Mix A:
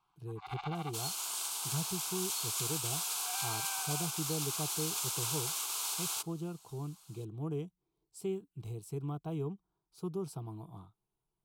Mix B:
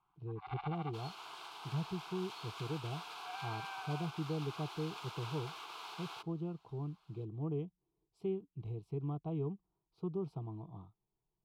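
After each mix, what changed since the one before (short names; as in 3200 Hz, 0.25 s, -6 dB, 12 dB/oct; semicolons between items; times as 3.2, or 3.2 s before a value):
speech: add bell 1600 Hz -14.5 dB 0.37 oct; master: add air absorption 360 m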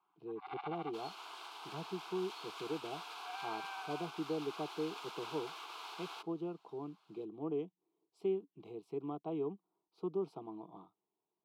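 speech +3.5 dB; master: add HPF 240 Hz 24 dB/oct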